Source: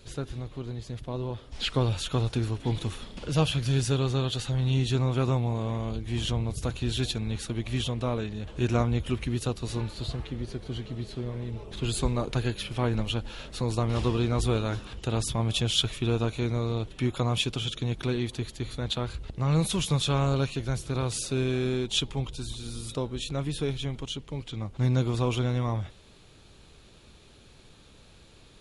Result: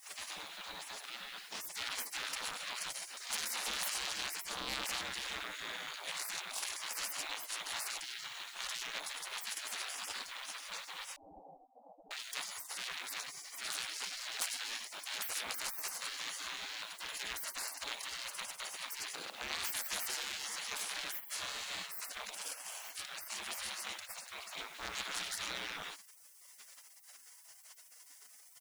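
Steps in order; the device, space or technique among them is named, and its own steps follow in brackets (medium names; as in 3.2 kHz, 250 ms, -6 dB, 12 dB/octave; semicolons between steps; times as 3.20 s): delay 99 ms -9.5 dB; open-reel tape (saturation -32 dBFS, distortion -6 dB; peaking EQ 62 Hz +2.5 dB 0.9 oct; white noise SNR 37 dB); spectral gate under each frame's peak -30 dB weak; 8.04–8.82 s: peaking EQ 380 Hz -6 dB 1.7 oct; 11.16–12.11 s: Chebyshev low-pass 810 Hz, order 6; trim +11.5 dB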